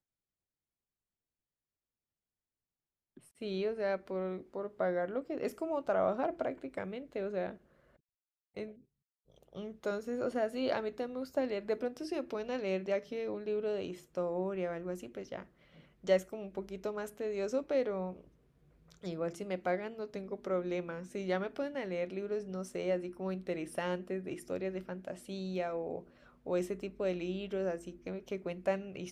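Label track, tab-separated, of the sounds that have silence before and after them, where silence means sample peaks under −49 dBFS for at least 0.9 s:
3.170000	7.560000	sound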